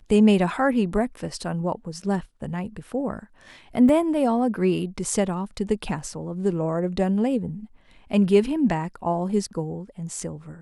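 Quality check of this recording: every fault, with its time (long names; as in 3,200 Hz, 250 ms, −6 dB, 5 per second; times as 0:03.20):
0:03.89: drop-out 2.3 ms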